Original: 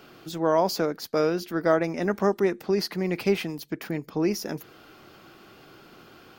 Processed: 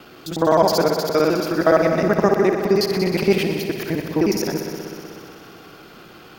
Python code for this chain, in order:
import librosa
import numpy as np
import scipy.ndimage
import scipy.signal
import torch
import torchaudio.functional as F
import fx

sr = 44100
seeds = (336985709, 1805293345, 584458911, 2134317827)

y = fx.local_reverse(x, sr, ms=52.0)
y = fx.echo_heads(y, sr, ms=62, heads='all three', feedback_pct=72, wet_db=-13.5)
y = F.gain(torch.from_numpy(y), 6.5).numpy()